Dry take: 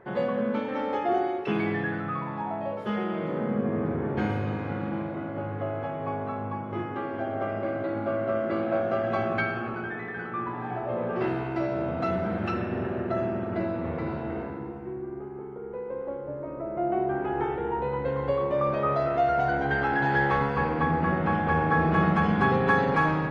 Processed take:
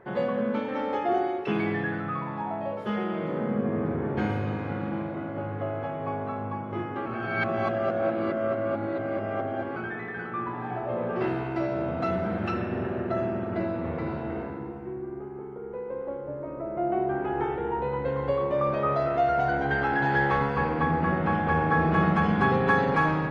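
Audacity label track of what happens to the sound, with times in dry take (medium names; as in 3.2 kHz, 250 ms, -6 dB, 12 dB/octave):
7.060000	9.760000	reverse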